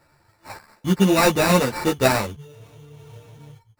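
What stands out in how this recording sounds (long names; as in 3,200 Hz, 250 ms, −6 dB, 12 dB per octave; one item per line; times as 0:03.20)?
a buzz of ramps at a fixed pitch in blocks of 8 samples
tremolo saw down 0.67 Hz, depth 35%
aliases and images of a low sample rate 3,200 Hz, jitter 0%
a shimmering, thickened sound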